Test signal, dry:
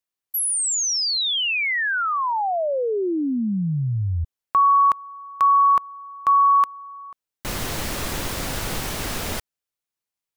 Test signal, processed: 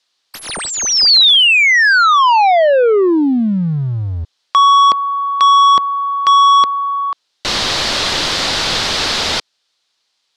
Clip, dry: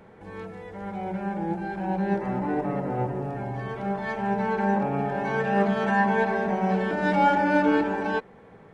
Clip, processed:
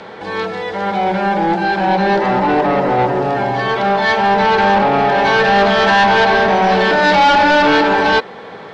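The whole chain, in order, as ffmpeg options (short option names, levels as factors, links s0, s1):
-filter_complex "[0:a]acrossover=split=430|2000[s0][s1][s2];[s0]acompressor=threshold=0.0708:ratio=4:attack=0.21:release=57:knee=2.83:detection=peak[s3];[s3][s1][s2]amix=inputs=3:normalize=0,aexciter=amount=2.4:drive=6:freq=3300,asplit=2[s4][s5];[s5]asoftclip=type=tanh:threshold=0.168,volume=0.473[s6];[s4][s6]amix=inputs=2:normalize=0,asplit=2[s7][s8];[s8]highpass=f=720:p=1,volume=17.8,asoftclip=type=tanh:threshold=0.668[s9];[s7][s9]amix=inputs=2:normalize=0,lowpass=f=2600:p=1,volume=0.501,lowpass=f=4700:t=q:w=1.7"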